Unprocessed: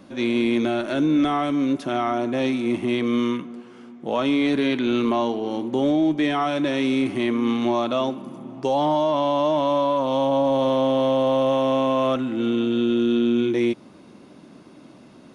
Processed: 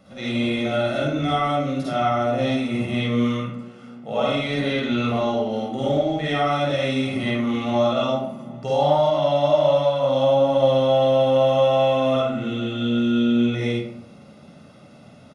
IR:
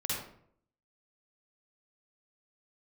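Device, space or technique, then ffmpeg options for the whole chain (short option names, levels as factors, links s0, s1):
microphone above a desk: -filter_complex "[0:a]aecho=1:1:1.5:0.68[s0];[1:a]atrim=start_sample=2205[s1];[s0][s1]afir=irnorm=-1:irlink=0,volume=0.596"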